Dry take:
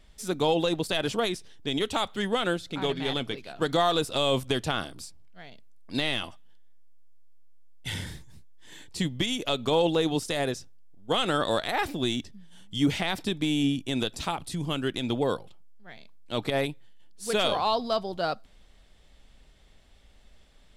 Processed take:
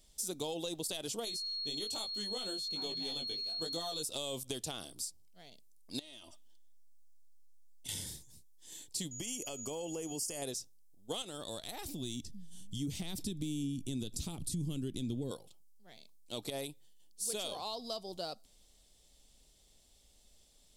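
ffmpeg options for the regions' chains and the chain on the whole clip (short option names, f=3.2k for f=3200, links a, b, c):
-filter_complex "[0:a]asettb=1/sr,asplit=3[a][b][c];[a]atrim=end=1.254[d];[b]atrim=start=1.25:end=4.03,asetpts=PTS-STARTPTS,afade=t=in:d=0.004:c=qsin,afade=t=out:st=2.776:d=0.004:c=qsin,flanger=delay=18:depth=2.4:speed=1.2,aeval=exprs='val(0)+0.02*sin(2*PI*4300*n/s)':c=same[e];[c]atrim=start=4.026[f];[d][e]acrossfade=d=0.004:c1=hsin:c2=qsin[g];[g][f]acrossfade=d=0.004:c1=qsin:c2=hsin,asettb=1/sr,asplit=3[h][i][j];[h]atrim=end=5.994[k];[i]atrim=start=5.99:end=7.89,asetpts=PTS-STARTPTS,afade=t=in:d=0.004:c=qsin,afade=t=out:st=1.896:d=0.004:c=qsin,equalizer=f=12k:w=1.6:g=-6.5,aecho=1:1:3.2:0.57,atrim=end_sample=83790,acompressor=threshold=-39dB:ratio=16:attack=3.2:release=140:knee=1:detection=peak[l];[j]atrim=start=7.886[m];[k][l]acrossfade=d=0.004:c1=hsin:c2=qsin[n];[n][m]acrossfade=d=0.004:c1=qsin:c2=hsin,asettb=1/sr,asplit=3[o][p][q];[o]atrim=end=9.114[r];[p]atrim=start=9.11:end=10.42,asetpts=PTS-STARTPTS,afade=t=in:d=0.004:c=qsin,afade=t=out:st=1.306:d=0.004:c=qsin,aeval=exprs='val(0)+0.00398*sin(2*PI*6800*n/s)':c=same,acompressor=threshold=-27dB:ratio=4:attack=3.2:release=140:knee=1:detection=peak,asuperstop=centerf=3800:order=8:qfactor=3.3[s];[q]atrim=start=10.416[t];[r][s]acrossfade=d=0.004:c1=hsin:c2=qsin[u];[u][t]acrossfade=d=0.004:c1=qsin:c2=hsin,asettb=1/sr,asplit=3[v][w][x];[v]atrim=end=11.224[y];[w]atrim=start=11.22:end=15.31,asetpts=PTS-STARTPTS,afade=t=in:d=0.004:c=qsin,afade=t=out:st=4.086:d=0.004:c=qsin,acompressor=threshold=-41dB:ratio=1.5:attack=3.2:release=140:knee=1:detection=peak,asubboost=boost=11:cutoff=250[z];[x]atrim=start=15.306[aa];[y][z]acrossfade=d=0.004:c1=hsin:c2=qsin[ab];[ab][aa]acrossfade=d=0.004:c1=qsin:c2=hsin,bass=f=250:g=-5,treble=f=4k:g=14,acompressor=threshold=-28dB:ratio=3,equalizer=f=1.6k:w=0.89:g=-11,volume=-6.5dB"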